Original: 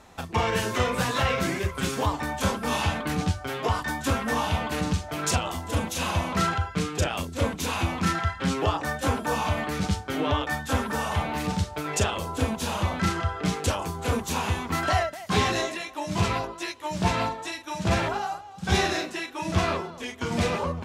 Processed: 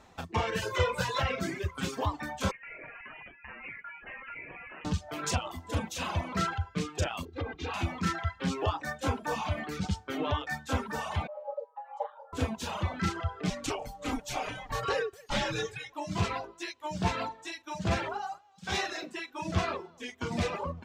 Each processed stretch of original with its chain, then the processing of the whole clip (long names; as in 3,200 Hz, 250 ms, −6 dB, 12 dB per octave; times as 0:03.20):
0:00.61–0:01.21: notch filter 290 Hz, Q 5.8 + comb filter 2 ms, depth 70%
0:02.51–0:04.85: high-pass filter 970 Hz + downward compressor 3 to 1, threshold −35 dBFS + voice inversion scrambler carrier 3,200 Hz
0:07.25–0:07.74: high-frequency loss of the air 230 metres + comb filter 2.5 ms, depth 84% + downward compressor 12 to 1, threshold −24 dBFS
0:11.27–0:12.33: pair of resonant band-passes 310 Hz, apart 1 octave + low-shelf EQ 310 Hz +7 dB + frequency shifter +380 Hz
0:13.50–0:15.93: high-pass filter 240 Hz + comb filter 6.2 ms, depth 38% + frequency shifter −210 Hz
0:18.38–0:19.02: high-pass filter 46 Hz + low-shelf EQ 380 Hz −11 dB
whole clip: reverb reduction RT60 1.1 s; parametric band 11,000 Hz −10.5 dB 0.54 octaves; level −4.5 dB